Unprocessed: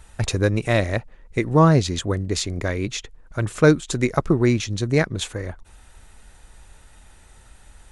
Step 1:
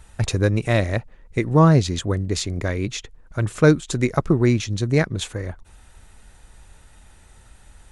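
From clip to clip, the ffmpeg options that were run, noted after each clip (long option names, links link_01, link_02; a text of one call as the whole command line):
ffmpeg -i in.wav -af "equalizer=frequency=120:width_type=o:width=2.1:gain=3,volume=-1dB" out.wav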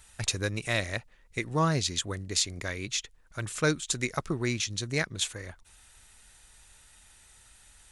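ffmpeg -i in.wav -af "tiltshelf=frequency=1400:gain=-8,volume=-6dB" out.wav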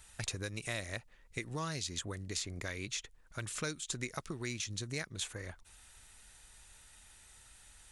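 ffmpeg -i in.wav -filter_complex "[0:a]acrossover=split=2100|6700[link_01][link_02][link_03];[link_01]acompressor=threshold=-37dB:ratio=4[link_04];[link_02]acompressor=threshold=-41dB:ratio=4[link_05];[link_03]acompressor=threshold=-41dB:ratio=4[link_06];[link_04][link_05][link_06]amix=inputs=3:normalize=0,volume=-2dB" out.wav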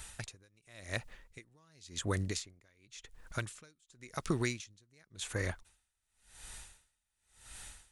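ffmpeg -i in.wav -af "aeval=exprs='val(0)*pow(10,-38*(0.5-0.5*cos(2*PI*0.92*n/s))/20)':channel_layout=same,volume=10dB" out.wav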